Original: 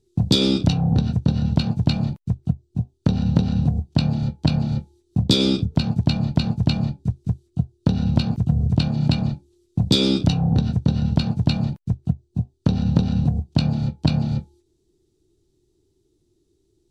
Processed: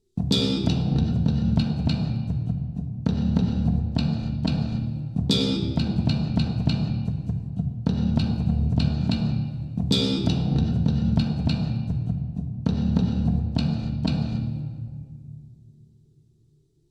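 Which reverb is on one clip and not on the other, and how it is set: simulated room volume 3200 m³, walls mixed, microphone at 1.6 m; trim -5.5 dB

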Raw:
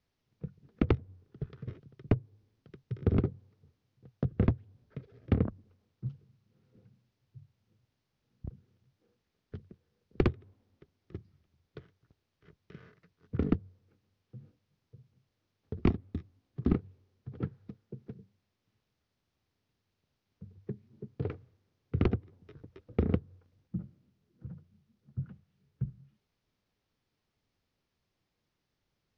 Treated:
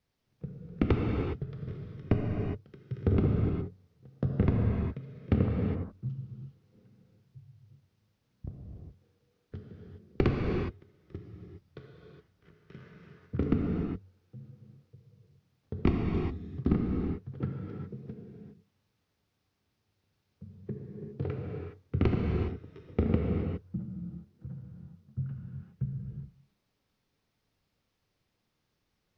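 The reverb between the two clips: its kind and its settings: gated-style reverb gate 440 ms flat, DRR -1 dB

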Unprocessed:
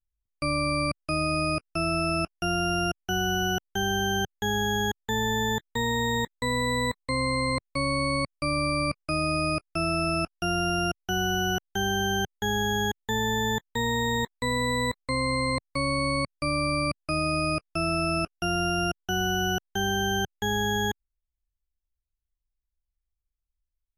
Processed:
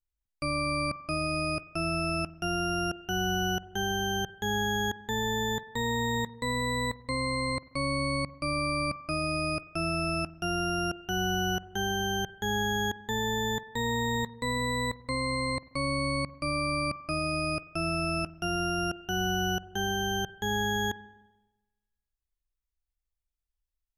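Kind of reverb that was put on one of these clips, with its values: spring tank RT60 1.1 s, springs 43/49 ms, chirp 60 ms, DRR 15.5 dB; trim -3.5 dB

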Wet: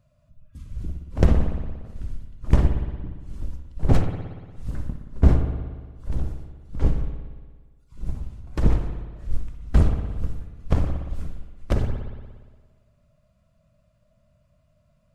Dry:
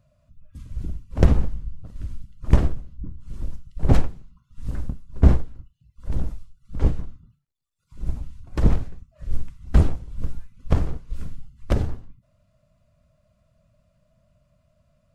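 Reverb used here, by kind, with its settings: spring tank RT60 1.5 s, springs 58 ms, chirp 35 ms, DRR 5.5 dB; trim -1.5 dB

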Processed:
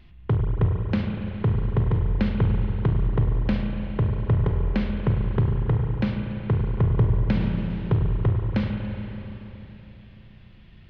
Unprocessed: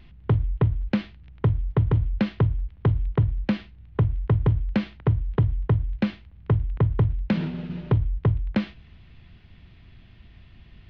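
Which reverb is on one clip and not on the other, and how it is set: spring tank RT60 3.6 s, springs 34/47 ms, chirp 25 ms, DRR 1.5 dB; trim -2 dB

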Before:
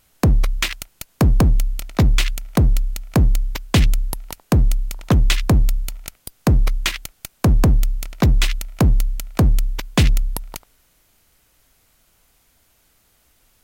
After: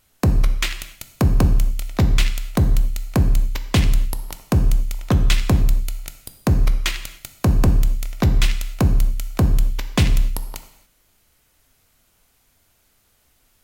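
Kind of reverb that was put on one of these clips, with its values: gated-style reverb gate 310 ms falling, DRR 8 dB; trim -2.5 dB

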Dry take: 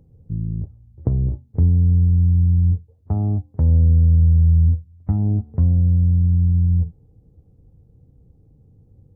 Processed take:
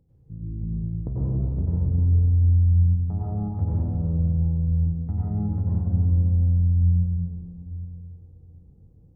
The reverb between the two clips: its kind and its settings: plate-style reverb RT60 3.1 s, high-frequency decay 0.5×, pre-delay 80 ms, DRR -9 dB; trim -12 dB

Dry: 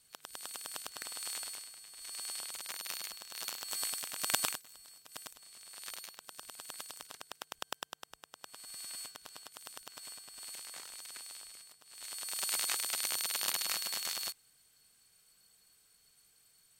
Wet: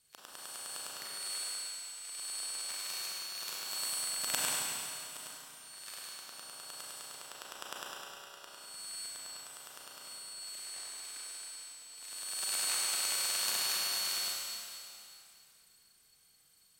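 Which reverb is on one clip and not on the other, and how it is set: Schroeder reverb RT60 2.7 s, combs from 30 ms, DRR -4 dB; trim -5 dB

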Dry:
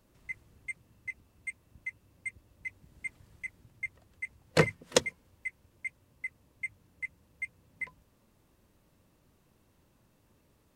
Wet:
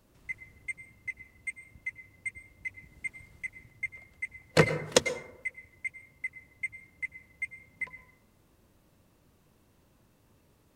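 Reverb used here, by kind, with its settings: plate-style reverb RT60 0.85 s, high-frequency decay 0.4×, pre-delay 85 ms, DRR 12 dB; trim +2 dB

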